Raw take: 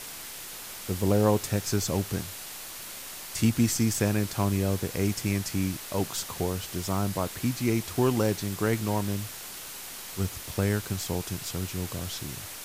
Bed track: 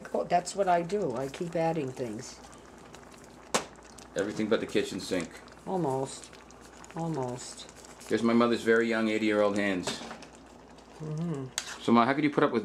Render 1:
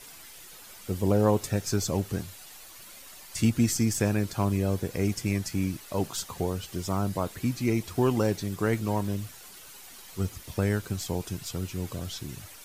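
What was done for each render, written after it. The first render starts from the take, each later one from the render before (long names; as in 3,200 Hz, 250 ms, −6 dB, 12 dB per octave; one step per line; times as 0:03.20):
broadband denoise 10 dB, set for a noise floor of −41 dBFS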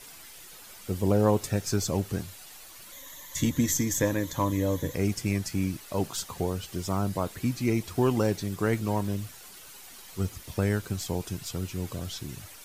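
0:02.92–0:04.95: EQ curve with evenly spaced ripples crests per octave 1.1, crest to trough 12 dB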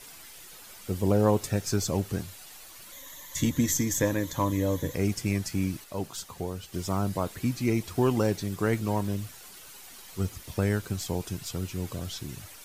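0:05.84–0:06.74: clip gain −4.5 dB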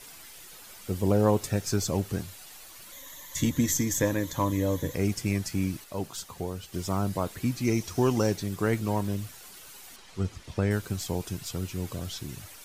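0:07.64–0:08.34: parametric band 5,900 Hz +9 dB 0.36 octaves
0:09.96–0:10.71: high-frequency loss of the air 70 metres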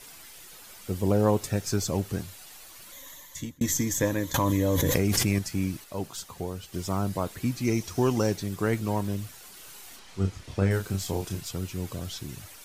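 0:03.10–0:03.61: fade out
0:04.34–0:05.39: envelope flattener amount 100%
0:09.56–0:11.41: double-tracking delay 31 ms −5 dB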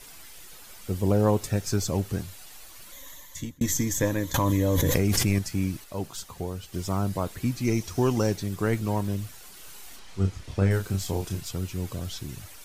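low-shelf EQ 61 Hz +9 dB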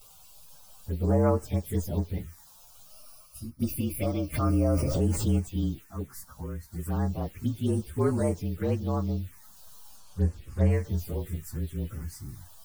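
partials spread apart or drawn together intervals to 114%
phaser swept by the level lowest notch 290 Hz, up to 3,600 Hz, full sweep at −21.5 dBFS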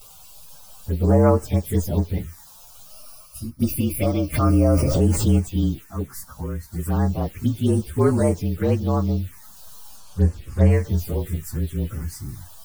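level +7.5 dB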